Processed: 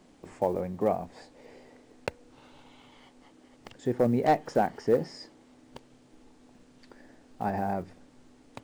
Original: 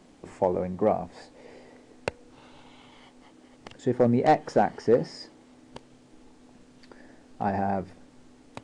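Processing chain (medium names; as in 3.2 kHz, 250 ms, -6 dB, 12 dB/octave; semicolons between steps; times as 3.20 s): block-companded coder 7-bit; trim -3 dB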